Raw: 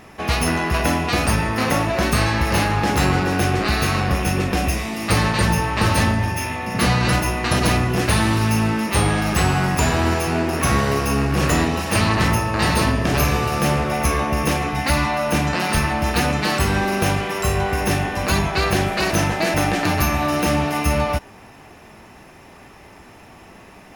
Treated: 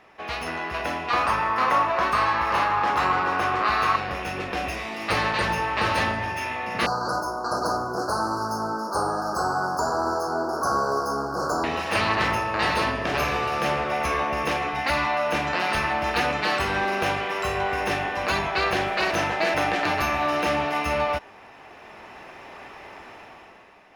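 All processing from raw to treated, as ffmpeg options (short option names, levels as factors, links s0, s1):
-filter_complex "[0:a]asettb=1/sr,asplit=3[s0][s1][s2];[s0]atrim=end=1.104[s3];[s1]atrim=start=1.1:end=3.96,asetpts=PTS-STARTPTS,afade=t=in:d=0.004:c=qsin,afade=t=out:st=2.856:d=0.004:c=qsin,equalizer=f=1100:w=1.9:g=13,aeval=exprs='clip(val(0),-1,0.398)':c=same[s4];[s2]atrim=start=3.956[s5];[s3][s4]acrossfade=d=0.004:c1=hsin:c2=qsin[s6];[s6][s5]acrossfade=d=0.004:c1=qsin:c2=hsin,asettb=1/sr,asplit=3[s7][s8][s9];[s7]atrim=end=6.864[s10];[s8]atrim=start=6.86:end=11.64,asetpts=PTS-STARTPTS,afade=t=in:d=0.004:c=qsin,afade=t=out:st=4.776:d=0.004:c=qsin,acrusher=bits=8:mode=log:mix=0:aa=0.000001,asuperstop=centerf=2600:order=20:qfactor=0.92,lowshelf=f=160:g=-11[s11];[s9]atrim=start=11.636[s12];[s10][s11]acrossfade=d=0.004:c1=hsin:c2=qsin[s13];[s13][s12]acrossfade=d=0.004:c1=qsin:c2=hsin,dynaudnorm=f=110:g=13:m=3.76,acrossover=split=380 4600:gain=0.224 1 0.178[s14][s15][s16];[s14][s15][s16]amix=inputs=3:normalize=0,volume=0.447"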